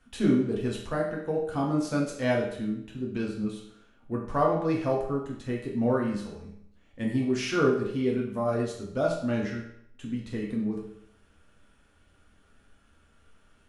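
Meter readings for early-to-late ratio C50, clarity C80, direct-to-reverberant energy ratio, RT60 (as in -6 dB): 4.0 dB, 7.5 dB, -3.0 dB, 0.70 s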